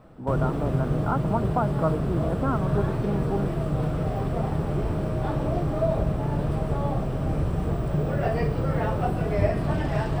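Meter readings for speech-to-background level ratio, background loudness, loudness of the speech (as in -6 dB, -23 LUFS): -3.0 dB, -26.5 LUFS, -29.5 LUFS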